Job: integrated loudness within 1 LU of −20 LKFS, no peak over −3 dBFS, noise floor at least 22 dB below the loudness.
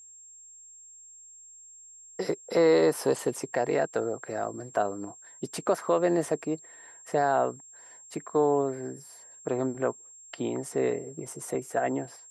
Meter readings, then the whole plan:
interfering tone 7,500 Hz; level of the tone −48 dBFS; integrated loudness −28.5 LKFS; sample peak −12.0 dBFS; target loudness −20.0 LKFS
→ notch filter 7,500 Hz, Q 30
level +8.5 dB

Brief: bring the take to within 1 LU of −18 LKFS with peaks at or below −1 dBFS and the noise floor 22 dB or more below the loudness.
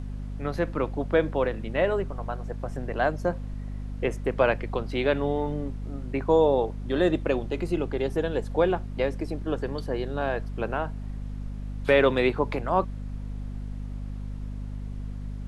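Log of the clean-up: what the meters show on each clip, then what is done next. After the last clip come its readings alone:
mains hum 50 Hz; hum harmonics up to 250 Hz; level of the hum −32 dBFS; background noise floor −35 dBFS; target noise floor −50 dBFS; integrated loudness −28.0 LKFS; sample peak −8.0 dBFS; target loudness −18.0 LKFS
→ hum removal 50 Hz, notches 5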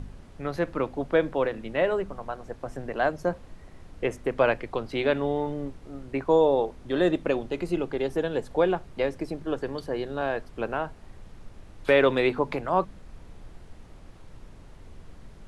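mains hum none found; background noise floor −48 dBFS; target noise floor −50 dBFS
→ noise reduction from a noise print 6 dB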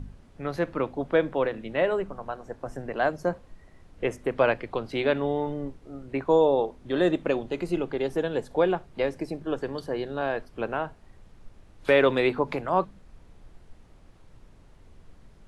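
background noise floor −54 dBFS; integrated loudness −27.5 LKFS; sample peak −8.5 dBFS; target loudness −18.0 LKFS
→ level +9.5 dB
brickwall limiter −1 dBFS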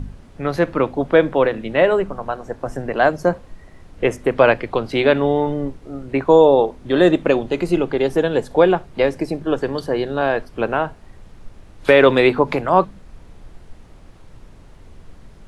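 integrated loudness −18.0 LKFS; sample peak −1.0 dBFS; background noise floor −45 dBFS

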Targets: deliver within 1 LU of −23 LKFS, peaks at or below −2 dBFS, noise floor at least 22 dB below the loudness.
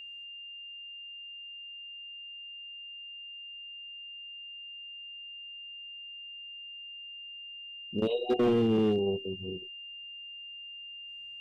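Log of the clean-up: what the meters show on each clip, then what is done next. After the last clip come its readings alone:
share of clipped samples 0.6%; peaks flattened at −21.0 dBFS; interfering tone 2,800 Hz; level of the tone −42 dBFS; integrated loudness −35.5 LKFS; sample peak −21.0 dBFS; target loudness −23.0 LKFS
→ clipped peaks rebuilt −21 dBFS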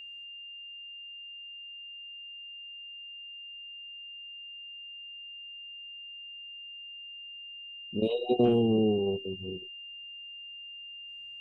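share of clipped samples 0.0%; interfering tone 2,800 Hz; level of the tone −42 dBFS
→ notch filter 2,800 Hz, Q 30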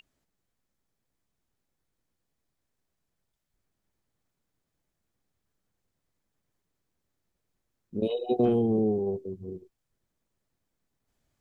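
interfering tone none found; integrated loudness −27.0 LKFS; sample peak −12.5 dBFS; target loudness −23.0 LKFS
→ level +4 dB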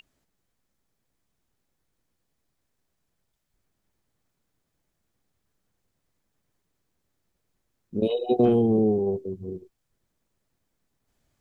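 integrated loudness −23.0 LKFS; sample peak −8.5 dBFS; background noise floor −78 dBFS

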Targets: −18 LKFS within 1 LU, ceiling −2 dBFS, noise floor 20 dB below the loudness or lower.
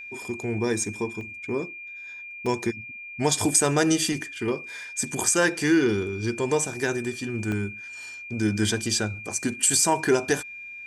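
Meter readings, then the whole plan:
number of dropouts 4; longest dropout 1.2 ms; interfering tone 2,400 Hz; level of the tone −37 dBFS; integrated loudness −25.0 LKFS; sample peak −7.0 dBFS; target loudness −18.0 LKFS
→ repair the gap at 0:01.21/0:02.46/0:03.31/0:07.52, 1.2 ms
notch filter 2,400 Hz, Q 30
level +7 dB
brickwall limiter −2 dBFS

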